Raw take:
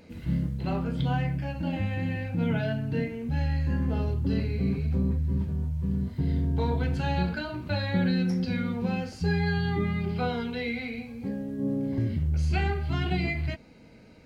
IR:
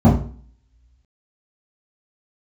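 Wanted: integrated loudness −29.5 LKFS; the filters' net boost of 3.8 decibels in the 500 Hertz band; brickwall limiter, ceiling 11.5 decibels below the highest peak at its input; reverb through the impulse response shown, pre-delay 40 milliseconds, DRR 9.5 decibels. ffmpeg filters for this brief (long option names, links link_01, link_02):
-filter_complex "[0:a]equalizer=frequency=500:width_type=o:gain=4.5,alimiter=level_in=1dB:limit=-24dB:level=0:latency=1,volume=-1dB,asplit=2[link_01][link_02];[1:a]atrim=start_sample=2205,adelay=40[link_03];[link_02][link_03]afir=irnorm=-1:irlink=0,volume=-32dB[link_04];[link_01][link_04]amix=inputs=2:normalize=0,volume=-4dB"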